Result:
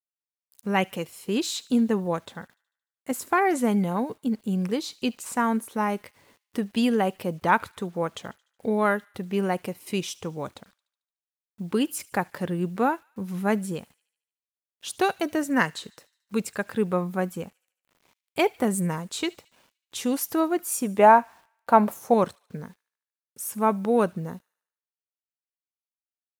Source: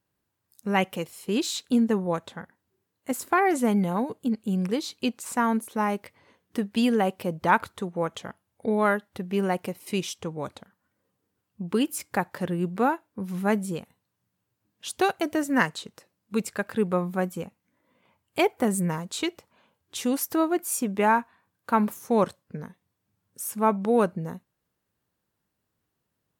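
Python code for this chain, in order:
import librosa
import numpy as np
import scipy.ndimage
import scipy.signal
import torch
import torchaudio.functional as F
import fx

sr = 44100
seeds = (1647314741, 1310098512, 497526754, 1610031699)

p1 = fx.peak_eq(x, sr, hz=680.0, db=11.5, octaves=0.93, at=(20.99, 22.14))
p2 = fx.quant_dither(p1, sr, seeds[0], bits=10, dither='none')
y = p2 + fx.echo_wet_highpass(p2, sr, ms=74, feedback_pct=54, hz=2300.0, wet_db=-21.0, dry=0)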